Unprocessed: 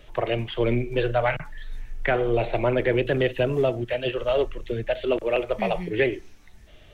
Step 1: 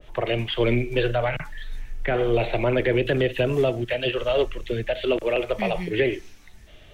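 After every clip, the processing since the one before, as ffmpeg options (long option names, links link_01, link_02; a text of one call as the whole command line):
ffmpeg -i in.wav -filter_complex "[0:a]acrossover=split=580[link_01][link_02];[link_02]alimiter=limit=-22.5dB:level=0:latency=1:release=82[link_03];[link_01][link_03]amix=inputs=2:normalize=0,adynamicequalizer=threshold=0.00794:dfrequency=1600:dqfactor=0.7:tfrequency=1600:tqfactor=0.7:attack=5:release=100:ratio=0.375:range=3:mode=boostabove:tftype=highshelf,volume=1.5dB" out.wav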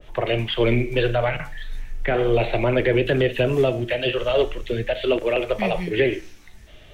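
ffmpeg -i in.wav -af "flanger=delay=9.1:depth=9.5:regen=-77:speed=0.38:shape=sinusoidal,volume=6.5dB" out.wav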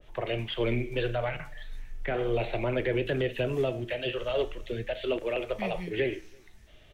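ffmpeg -i in.wav -filter_complex "[0:a]asplit=2[link_01][link_02];[link_02]adelay=332.4,volume=-30dB,highshelf=frequency=4000:gain=-7.48[link_03];[link_01][link_03]amix=inputs=2:normalize=0,volume=-9dB" out.wav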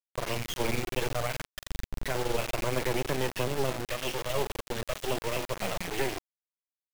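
ffmpeg -i in.wav -af "acrusher=bits=3:dc=4:mix=0:aa=0.000001,volume=2dB" out.wav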